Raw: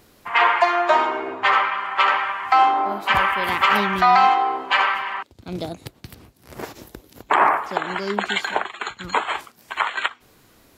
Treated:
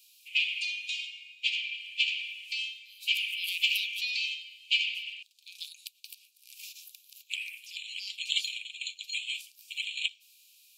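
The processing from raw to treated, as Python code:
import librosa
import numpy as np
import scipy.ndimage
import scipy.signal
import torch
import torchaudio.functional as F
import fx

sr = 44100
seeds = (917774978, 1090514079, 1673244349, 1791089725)

y = scipy.signal.sosfilt(scipy.signal.cheby1(8, 1.0, 2400.0, 'highpass', fs=sr, output='sos'), x)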